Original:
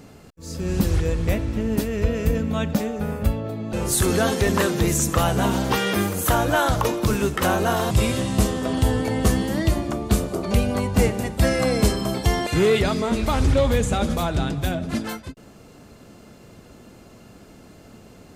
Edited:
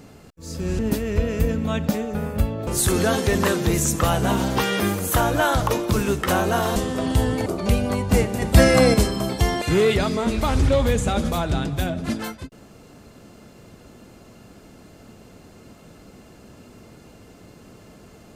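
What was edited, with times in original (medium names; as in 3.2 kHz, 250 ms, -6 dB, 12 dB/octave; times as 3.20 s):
0.79–1.65 s: delete
3.53–3.81 s: delete
7.90–8.43 s: delete
9.13–10.31 s: delete
11.27–11.79 s: gain +6 dB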